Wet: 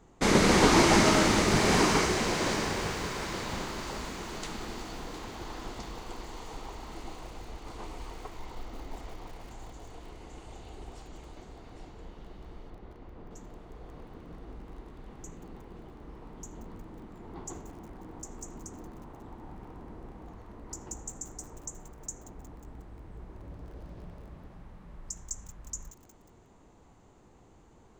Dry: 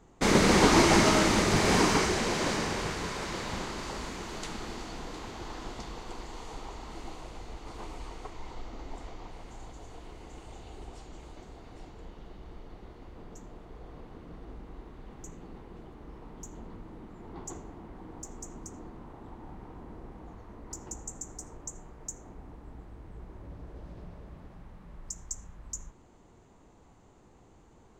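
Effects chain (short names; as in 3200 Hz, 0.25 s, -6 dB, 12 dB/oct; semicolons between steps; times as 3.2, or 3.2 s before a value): 12.7–13.31 LPF 2400 Hz 6 dB/oct; lo-fi delay 0.18 s, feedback 80%, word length 7-bit, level -14.5 dB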